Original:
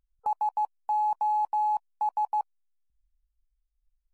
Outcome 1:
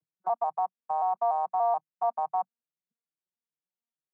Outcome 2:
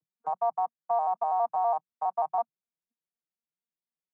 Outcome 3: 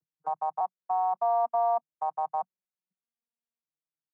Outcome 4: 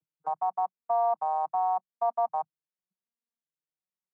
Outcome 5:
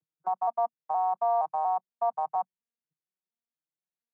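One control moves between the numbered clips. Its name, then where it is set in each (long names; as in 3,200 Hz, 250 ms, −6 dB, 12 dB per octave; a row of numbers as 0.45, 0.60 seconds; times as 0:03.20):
vocoder with an arpeggio as carrier, a note every: 145, 82, 602, 379, 235 milliseconds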